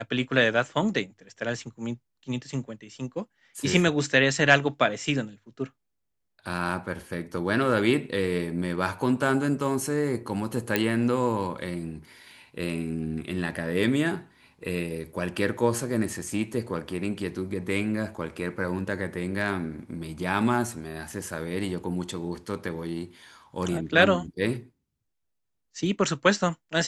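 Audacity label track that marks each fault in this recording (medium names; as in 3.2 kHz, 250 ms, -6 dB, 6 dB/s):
10.760000	10.760000	pop -8 dBFS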